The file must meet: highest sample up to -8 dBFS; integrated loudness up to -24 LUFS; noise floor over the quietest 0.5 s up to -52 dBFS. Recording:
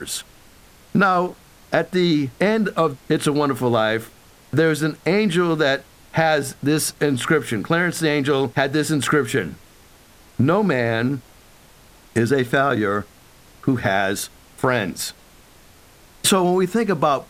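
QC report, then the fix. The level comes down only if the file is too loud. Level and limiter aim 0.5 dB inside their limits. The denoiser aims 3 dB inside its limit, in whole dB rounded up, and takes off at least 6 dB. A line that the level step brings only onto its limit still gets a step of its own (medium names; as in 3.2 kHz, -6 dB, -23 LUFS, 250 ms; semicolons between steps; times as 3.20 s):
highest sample -4.5 dBFS: fail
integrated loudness -20.5 LUFS: fail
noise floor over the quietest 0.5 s -49 dBFS: fail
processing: trim -4 dB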